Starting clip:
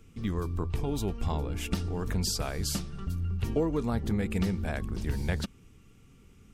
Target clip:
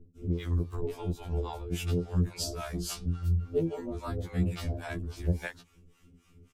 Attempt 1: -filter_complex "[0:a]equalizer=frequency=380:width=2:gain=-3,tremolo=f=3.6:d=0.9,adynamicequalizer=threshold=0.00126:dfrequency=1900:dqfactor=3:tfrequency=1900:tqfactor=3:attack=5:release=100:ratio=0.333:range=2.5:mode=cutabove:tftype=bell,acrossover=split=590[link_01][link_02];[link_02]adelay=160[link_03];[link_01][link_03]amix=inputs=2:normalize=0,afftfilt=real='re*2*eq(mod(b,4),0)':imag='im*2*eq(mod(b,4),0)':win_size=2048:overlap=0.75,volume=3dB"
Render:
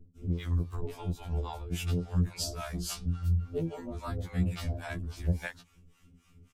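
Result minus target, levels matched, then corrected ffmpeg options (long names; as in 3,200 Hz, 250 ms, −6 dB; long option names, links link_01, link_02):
500 Hz band −4.0 dB
-filter_complex "[0:a]equalizer=frequency=380:width=2:gain=4.5,tremolo=f=3.6:d=0.9,adynamicequalizer=threshold=0.00126:dfrequency=1900:dqfactor=3:tfrequency=1900:tqfactor=3:attack=5:release=100:ratio=0.333:range=2.5:mode=cutabove:tftype=bell,acrossover=split=590[link_01][link_02];[link_02]adelay=160[link_03];[link_01][link_03]amix=inputs=2:normalize=0,afftfilt=real='re*2*eq(mod(b,4),0)':imag='im*2*eq(mod(b,4),0)':win_size=2048:overlap=0.75,volume=3dB"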